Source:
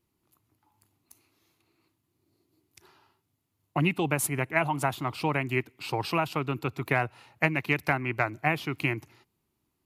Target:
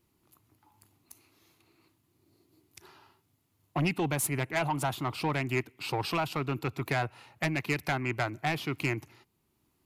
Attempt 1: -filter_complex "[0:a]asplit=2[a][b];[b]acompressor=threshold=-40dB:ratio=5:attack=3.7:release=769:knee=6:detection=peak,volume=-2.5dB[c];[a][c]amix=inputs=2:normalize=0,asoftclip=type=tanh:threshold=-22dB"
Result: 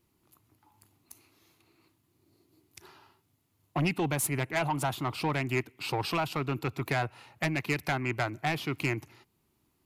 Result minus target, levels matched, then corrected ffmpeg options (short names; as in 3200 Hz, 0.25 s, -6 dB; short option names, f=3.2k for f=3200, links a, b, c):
compressor: peak gain reduction -7.5 dB
-filter_complex "[0:a]asplit=2[a][b];[b]acompressor=threshold=-49.5dB:ratio=5:attack=3.7:release=769:knee=6:detection=peak,volume=-2.5dB[c];[a][c]amix=inputs=2:normalize=0,asoftclip=type=tanh:threshold=-22dB"